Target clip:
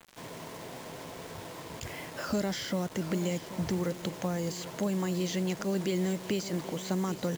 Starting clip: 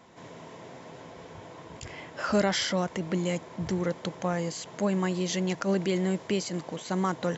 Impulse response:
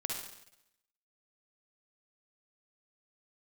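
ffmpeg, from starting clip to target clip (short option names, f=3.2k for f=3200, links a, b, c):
-filter_complex "[0:a]acrossover=split=470|3900[a][b][c];[a]acompressor=threshold=-30dB:ratio=4[d];[b]acompressor=threshold=-41dB:ratio=4[e];[c]acompressor=threshold=-44dB:ratio=4[f];[d][e][f]amix=inputs=3:normalize=0,acrusher=bits=7:mix=0:aa=0.000001,aecho=1:1:782:0.2,volume=1.5dB"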